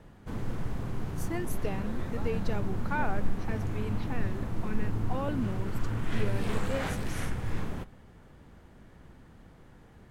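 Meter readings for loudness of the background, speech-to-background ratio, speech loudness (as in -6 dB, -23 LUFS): -35.5 LUFS, -3.0 dB, -38.5 LUFS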